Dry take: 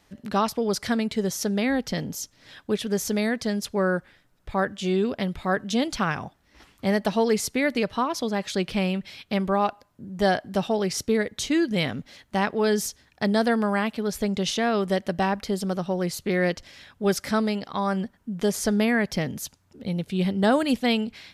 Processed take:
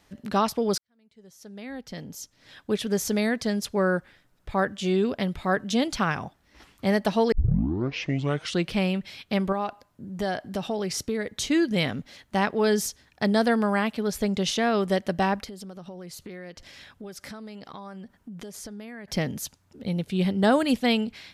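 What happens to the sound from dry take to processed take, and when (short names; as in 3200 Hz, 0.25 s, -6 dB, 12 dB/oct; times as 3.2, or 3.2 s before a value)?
0.78–2.81 fade in quadratic
7.32 tape start 1.38 s
9.52–11.29 compressor 2.5:1, threshold -26 dBFS
15.44–19.08 compressor 8:1, threshold -37 dBFS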